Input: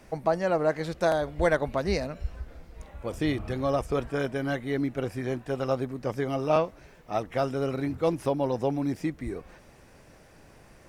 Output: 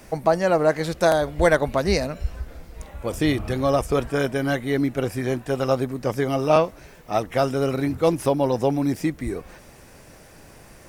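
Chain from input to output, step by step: treble shelf 7 kHz +9.5 dB; trim +6 dB

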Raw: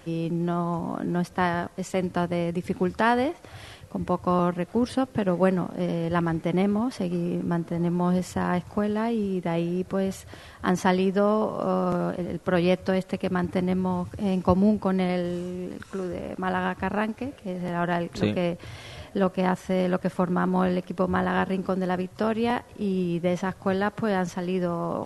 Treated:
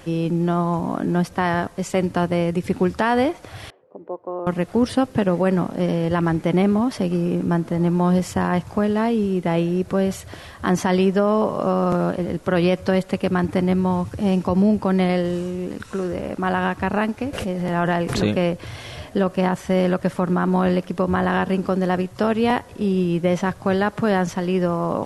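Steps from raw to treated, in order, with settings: 3.70–4.47 s: ladder band-pass 500 Hz, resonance 45%; loudness maximiser +13.5 dB; 17.33–18.23 s: swell ahead of each attack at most 41 dB/s; trim -7.5 dB

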